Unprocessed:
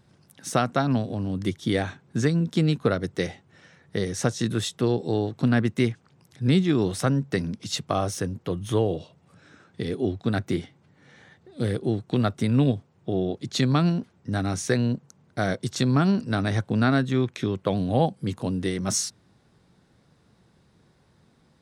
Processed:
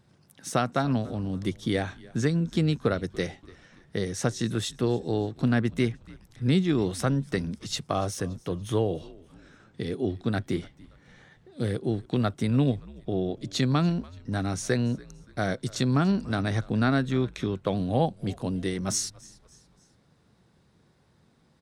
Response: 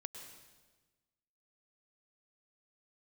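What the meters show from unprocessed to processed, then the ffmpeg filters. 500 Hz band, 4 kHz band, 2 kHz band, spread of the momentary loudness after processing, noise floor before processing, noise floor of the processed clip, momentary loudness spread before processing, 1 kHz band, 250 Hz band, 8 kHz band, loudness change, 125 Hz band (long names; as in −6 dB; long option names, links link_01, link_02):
−2.5 dB, −2.5 dB, −2.5 dB, 9 LU, −62 dBFS, −63 dBFS, 9 LU, −2.5 dB, −2.5 dB, −2.5 dB, −2.5 dB, −2.5 dB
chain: -filter_complex "[0:a]asplit=4[link_01][link_02][link_03][link_04];[link_02]adelay=287,afreqshift=-79,volume=-22dB[link_05];[link_03]adelay=574,afreqshift=-158,volume=-29.1dB[link_06];[link_04]adelay=861,afreqshift=-237,volume=-36.3dB[link_07];[link_01][link_05][link_06][link_07]amix=inputs=4:normalize=0,volume=-2.5dB"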